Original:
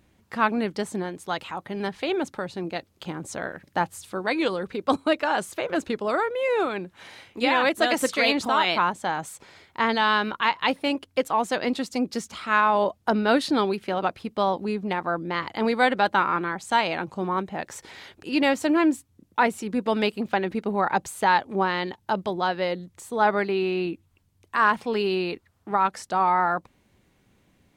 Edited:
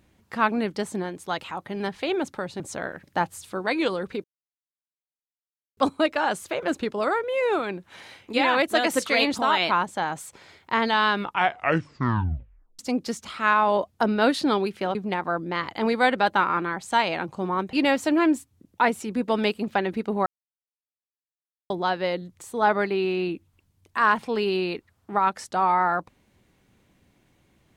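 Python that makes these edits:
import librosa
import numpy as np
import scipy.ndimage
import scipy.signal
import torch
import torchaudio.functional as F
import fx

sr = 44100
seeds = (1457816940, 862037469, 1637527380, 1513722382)

y = fx.edit(x, sr, fx.cut(start_s=2.6, length_s=0.6),
    fx.insert_silence(at_s=4.84, length_s=1.53),
    fx.tape_stop(start_s=10.18, length_s=1.68),
    fx.cut(start_s=14.02, length_s=0.72),
    fx.cut(start_s=17.52, length_s=0.79),
    fx.silence(start_s=20.84, length_s=1.44), tone=tone)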